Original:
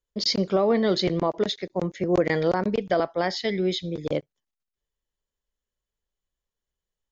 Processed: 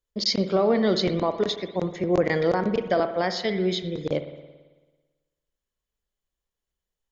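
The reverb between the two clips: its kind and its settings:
spring reverb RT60 1.3 s, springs 55 ms, chirp 70 ms, DRR 9.5 dB

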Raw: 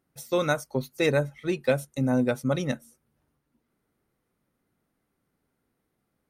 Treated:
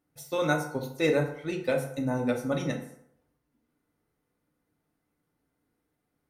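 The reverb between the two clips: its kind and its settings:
feedback delay network reverb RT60 0.72 s, low-frequency decay 0.85×, high-frequency decay 0.6×, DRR 1 dB
level −4.5 dB

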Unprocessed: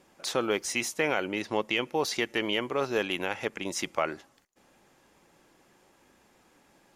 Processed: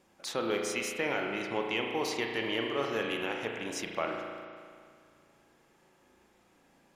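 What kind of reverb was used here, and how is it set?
spring reverb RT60 2.1 s, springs 35 ms, chirp 20 ms, DRR 1 dB
level −5.5 dB

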